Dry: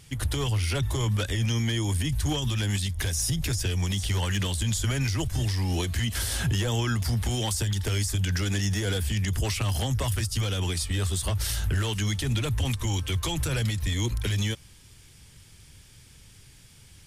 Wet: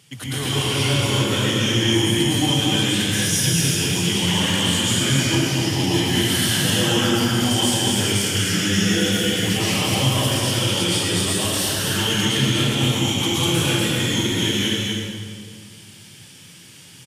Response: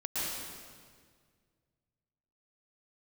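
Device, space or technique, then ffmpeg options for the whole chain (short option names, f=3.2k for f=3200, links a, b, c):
stadium PA: -filter_complex "[0:a]highpass=f=130:w=0.5412,highpass=f=130:w=1.3066,equalizer=f=3k:t=o:w=0.3:g=5.5,aecho=1:1:244.9|291.5:0.631|0.251[a];[1:a]atrim=start_sample=2205[b];[a][b]afir=irnorm=-1:irlink=0,volume=2.5dB"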